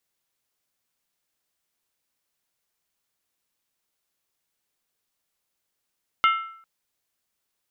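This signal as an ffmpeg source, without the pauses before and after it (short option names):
-f lavfi -i "aevalsrc='0.2*pow(10,-3*t/0.61)*sin(2*PI*1330*t)+0.106*pow(10,-3*t/0.483)*sin(2*PI*2120*t)+0.0562*pow(10,-3*t/0.417)*sin(2*PI*2840.9*t)+0.0299*pow(10,-3*t/0.403)*sin(2*PI*3053.7*t)+0.0158*pow(10,-3*t/0.375)*sin(2*PI*3528.5*t)':d=0.4:s=44100"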